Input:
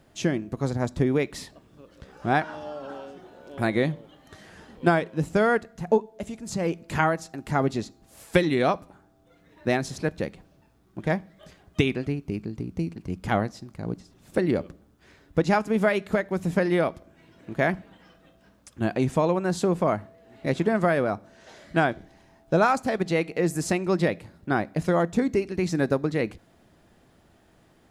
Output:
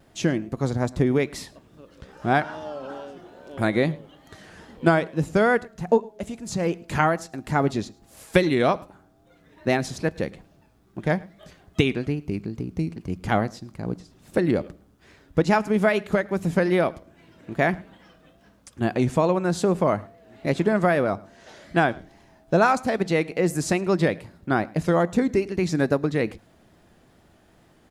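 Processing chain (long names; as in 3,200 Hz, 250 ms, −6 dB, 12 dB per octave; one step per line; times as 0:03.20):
pitch vibrato 2.4 Hz 60 cents
single-tap delay 108 ms −24 dB
level +2 dB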